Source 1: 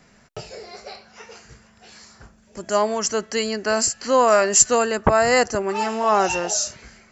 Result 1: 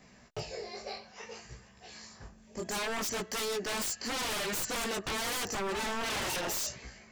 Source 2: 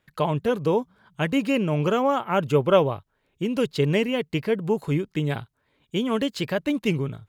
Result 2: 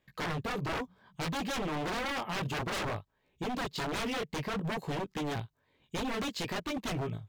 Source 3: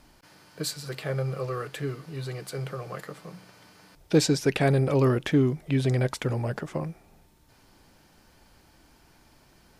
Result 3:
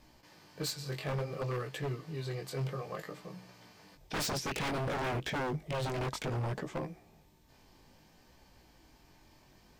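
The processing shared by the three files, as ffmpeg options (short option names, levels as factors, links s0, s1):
-af "equalizer=f=10000:w=5:g=-14,bandreject=f=1400:w=6,flanger=delay=15.5:depth=7.1:speed=0.59,aeval=exprs='(tanh(6.31*val(0)+0.15)-tanh(0.15))/6.31':c=same,aeval=exprs='0.0355*(abs(mod(val(0)/0.0355+3,4)-2)-1)':c=same"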